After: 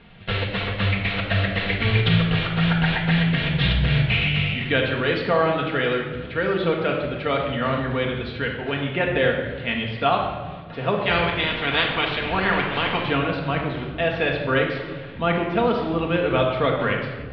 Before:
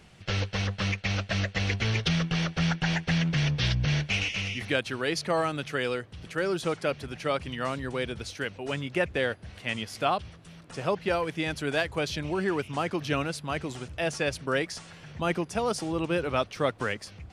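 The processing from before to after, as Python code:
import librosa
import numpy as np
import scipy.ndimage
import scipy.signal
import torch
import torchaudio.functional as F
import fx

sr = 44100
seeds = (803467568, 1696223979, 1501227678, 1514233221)

y = fx.spec_clip(x, sr, under_db=20, at=(10.98, 13.02), fade=0.02)
y = scipy.signal.sosfilt(scipy.signal.ellip(4, 1.0, 50, 3800.0, 'lowpass', fs=sr, output='sos'), y)
y = fx.room_shoebox(y, sr, seeds[0], volume_m3=1100.0, walls='mixed', distance_m=1.7)
y = y * librosa.db_to_amplitude(4.5)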